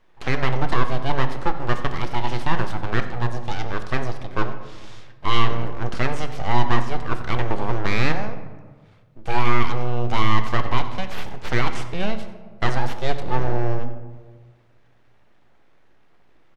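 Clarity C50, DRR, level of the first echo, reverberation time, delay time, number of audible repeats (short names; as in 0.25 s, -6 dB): 10.0 dB, 7.5 dB, -17.5 dB, 1.5 s, 91 ms, 1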